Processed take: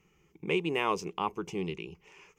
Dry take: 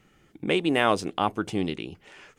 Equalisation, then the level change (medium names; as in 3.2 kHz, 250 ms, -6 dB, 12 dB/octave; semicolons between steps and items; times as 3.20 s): rippled EQ curve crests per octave 0.77, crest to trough 12 dB; -8.5 dB